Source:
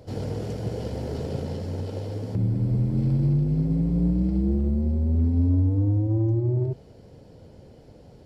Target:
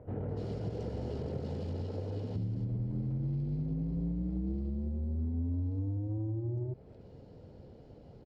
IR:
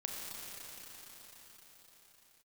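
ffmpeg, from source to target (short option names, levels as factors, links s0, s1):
-filter_complex "[0:a]adynamicsmooth=sensitivity=7:basefreq=4700,asetrate=42845,aresample=44100,atempo=1.0293,acrossover=split=2000[s0][s1];[s1]adelay=290[s2];[s0][s2]amix=inputs=2:normalize=0,acompressor=threshold=0.0355:ratio=4,volume=0.631"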